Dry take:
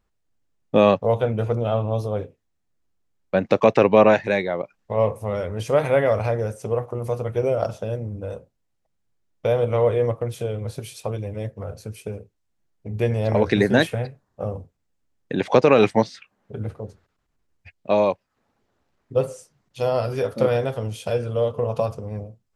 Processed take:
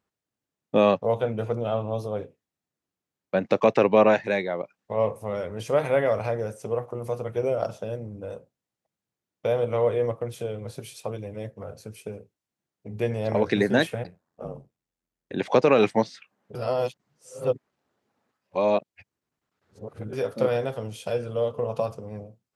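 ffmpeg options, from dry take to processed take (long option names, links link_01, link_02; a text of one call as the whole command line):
ffmpeg -i in.wav -filter_complex "[0:a]asplit=3[link_01][link_02][link_03];[link_01]afade=type=out:start_time=14.03:duration=0.02[link_04];[link_02]aeval=exprs='val(0)*sin(2*PI*43*n/s)':channel_layout=same,afade=type=in:start_time=14.03:duration=0.02,afade=type=out:start_time=15.37:duration=0.02[link_05];[link_03]afade=type=in:start_time=15.37:duration=0.02[link_06];[link_04][link_05][link_06]amix=inputs=3:normalize=0,asplit=3[link_07][link_08][link_09];[link_07]atrim=end=16.552[link_10];[link_08]atrim=start=16.548:end=20.132,asetpts=PTS-STARTPTS,areverse[link_11];[link_09]atrim=start=20.128[link_12];[link_10][link_11]acrossfade=duration=0.004:curve1=hsin:curve2=hsin[link_13];[link_13][link_12]acrossfade=duration=0.004:curve1=hsin:curve2=hsin,highpass=130,volume=-3.5dB" out.wav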